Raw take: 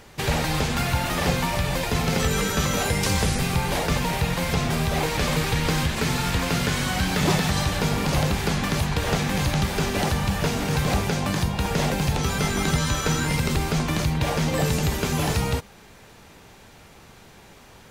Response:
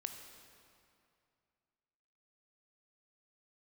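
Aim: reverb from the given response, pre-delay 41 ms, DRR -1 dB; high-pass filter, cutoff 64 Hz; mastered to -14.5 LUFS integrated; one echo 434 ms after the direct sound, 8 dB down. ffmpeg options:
-filter_complex "[0:a]highpass=64,aecho=1:1:434:0.398,asplit=2[s0][s1];[1:a]atrim=start_sample=2205,adelay=41[s2];[s1][s2]afir=irnorm=-1:irlink=0,volume=1.41[s3];[s0][s3]amix=inputs=2:normalize=0,volume=1.78"

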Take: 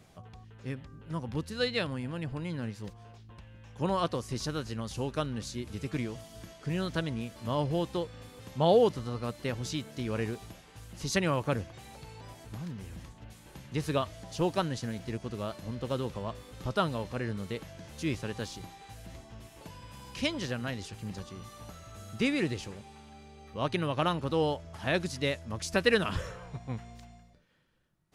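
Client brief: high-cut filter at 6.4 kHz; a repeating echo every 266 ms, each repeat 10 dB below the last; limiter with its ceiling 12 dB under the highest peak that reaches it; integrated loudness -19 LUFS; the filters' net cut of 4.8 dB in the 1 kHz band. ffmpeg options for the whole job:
-af "lowpass=6400,equalizer=f=1000:t=o:g=-6.5,alimiter=limit=0.0708:level=0:latency=1,aecho=1:1:266|532|798|1064:0.316|0.101|0.0324|0.0104,volume=7.5"

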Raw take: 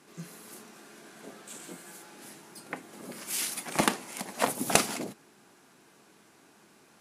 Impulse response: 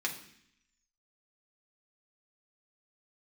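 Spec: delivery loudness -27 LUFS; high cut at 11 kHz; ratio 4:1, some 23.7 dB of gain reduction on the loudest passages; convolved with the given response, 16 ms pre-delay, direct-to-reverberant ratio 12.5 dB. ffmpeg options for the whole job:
-filter_complex "[0:a]lowpass=11000,acompressor=threshold=0.00398:ratio=4,asplit=2[s0][s1];[1:a]atrim=start_sample=2205,adelay=16[s2];[s1][s2]afir=irnorm=-1:irlink=0,volume=0.141[s3];[s0][s3]amix=inputs=2:normalize=0,volume=15"

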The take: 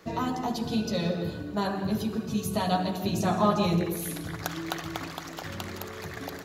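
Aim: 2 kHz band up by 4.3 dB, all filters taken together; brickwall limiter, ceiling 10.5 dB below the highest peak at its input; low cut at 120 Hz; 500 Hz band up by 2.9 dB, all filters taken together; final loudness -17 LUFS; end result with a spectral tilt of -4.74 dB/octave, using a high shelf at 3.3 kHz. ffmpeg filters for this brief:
-af "highpass=120,equalizer=f=500:t=o:g=3.5,equalizer=f=2000:t=o:g=4,highshelf=f=3300:g=4.5,volume=4.73,alimiter=limit=0.531:level=0:latency=1"

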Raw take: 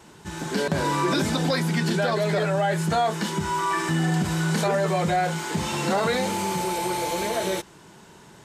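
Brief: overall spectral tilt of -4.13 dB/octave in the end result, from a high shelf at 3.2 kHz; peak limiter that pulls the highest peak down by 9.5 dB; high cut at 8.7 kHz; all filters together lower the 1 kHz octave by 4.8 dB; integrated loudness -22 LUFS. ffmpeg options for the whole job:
-af "lowpass=8700,equalizer=f=1000:t=o:g=-7,highshelf=f=3200:g=5.5,volume=2.37,alimiter=limit=0.2:level=0:latency=1"

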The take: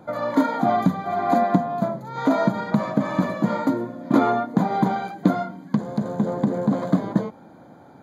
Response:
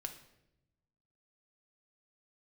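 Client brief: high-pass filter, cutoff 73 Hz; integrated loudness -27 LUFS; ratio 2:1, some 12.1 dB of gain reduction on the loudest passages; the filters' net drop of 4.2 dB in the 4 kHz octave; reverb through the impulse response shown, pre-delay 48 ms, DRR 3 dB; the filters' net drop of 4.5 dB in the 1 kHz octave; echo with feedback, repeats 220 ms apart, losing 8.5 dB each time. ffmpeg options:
-filter_complex "[0:a]highpass=73,equalizer=f=1000:t=o:g=-7,equalizer=f=4000:t=o:g=-4.5,acompressor=threshold=0.0141:ratio=2,aecho=1:1:220|440|660|880:0.376|0.143|0.0543|0.0206,asplit=2[s0][s1];[1:a]atrim=start_sample=2205,adelay=48[s2];[s1][s2]afir=irnorm=-1:irlink=0,volume=0.944[s3];[s0][s3]amix=inputs=2:normalize=0,volume=1.78"

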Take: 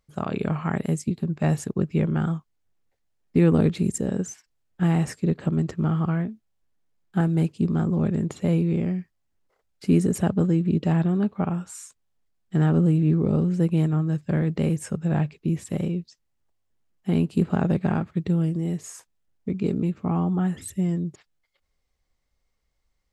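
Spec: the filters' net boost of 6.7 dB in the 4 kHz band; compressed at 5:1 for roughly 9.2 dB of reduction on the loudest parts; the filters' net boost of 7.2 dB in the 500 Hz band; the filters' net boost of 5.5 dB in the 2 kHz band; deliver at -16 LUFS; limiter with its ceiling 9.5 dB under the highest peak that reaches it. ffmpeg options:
-af "equalizer=f=500:t=o:g=9,equalizer=f=2000:t=o:g=5,equalizer=f=4000:t=o:g=7,acompressor=threshold=0.0891:ratio=5,volume=5.01,alimiter=limit=0.562:level=0:latency=1"

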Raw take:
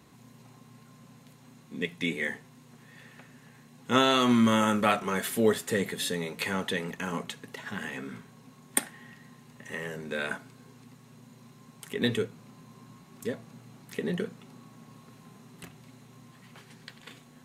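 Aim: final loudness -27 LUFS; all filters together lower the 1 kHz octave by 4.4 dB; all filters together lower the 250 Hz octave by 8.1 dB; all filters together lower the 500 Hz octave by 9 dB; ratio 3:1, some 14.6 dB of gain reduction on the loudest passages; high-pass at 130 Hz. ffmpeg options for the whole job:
-af "highpass=130,equalizer=f=250:t=o:g=-7,equalizer=f=500:t=o:g=-8,equalizer=f=1000:t=o:g=-4,acompressor=threshold=0.00562:ratio=3,volume=10.6"

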